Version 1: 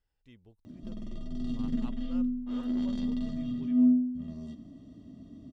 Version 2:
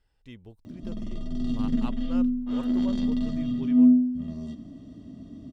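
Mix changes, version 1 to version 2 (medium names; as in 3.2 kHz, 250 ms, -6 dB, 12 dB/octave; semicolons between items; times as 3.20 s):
speech +10.5 dB; background +5.5 dB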